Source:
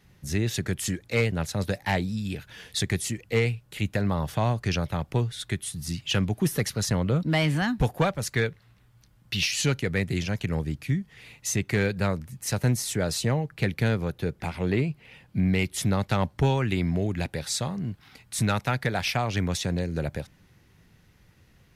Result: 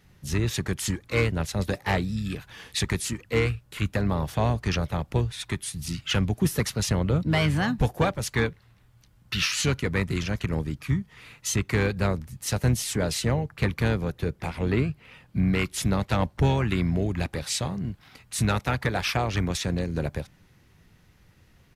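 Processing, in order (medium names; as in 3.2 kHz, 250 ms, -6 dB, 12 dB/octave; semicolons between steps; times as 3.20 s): harmony voices -12 st -12 dB, -7 st -11 dB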